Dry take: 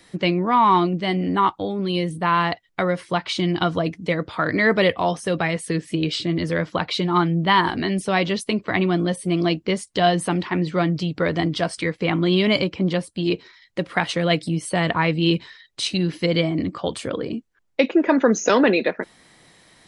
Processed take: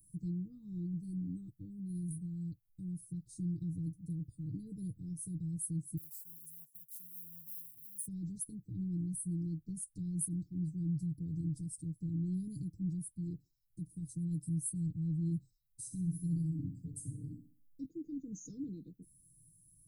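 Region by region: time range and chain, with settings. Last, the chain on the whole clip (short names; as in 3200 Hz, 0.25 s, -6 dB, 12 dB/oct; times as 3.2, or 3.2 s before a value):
5.97–8.07 G.711 law mismatch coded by A + pre-emphasis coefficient 0.97
15.82–17.85 band shelf 1800 Hz -8.5 dB 2.4 oct + comb 7.3 ms, depth 46% + flutter echo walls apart 11 m, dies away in 0.44 s
whole clip: inverse Chebyshev band-stop 620–3000 Hz, stop band 80 dB; resonant low shelf 230 Hz -7.5 dB, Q 1.5; comb 6.5 ms, depth 69%; gain +4 dB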